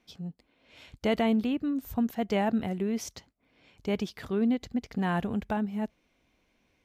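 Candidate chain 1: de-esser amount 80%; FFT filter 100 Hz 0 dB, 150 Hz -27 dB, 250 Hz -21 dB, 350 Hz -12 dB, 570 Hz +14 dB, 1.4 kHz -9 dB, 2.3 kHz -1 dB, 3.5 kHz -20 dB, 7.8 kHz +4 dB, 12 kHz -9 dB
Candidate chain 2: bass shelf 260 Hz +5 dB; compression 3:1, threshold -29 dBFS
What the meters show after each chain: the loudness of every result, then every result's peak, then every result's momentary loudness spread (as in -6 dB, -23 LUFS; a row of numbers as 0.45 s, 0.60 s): -29.0 LUFS, -33.5 LUFS; -10.5 dBFS, -18.0 dBFS; 15 LU, 9 LU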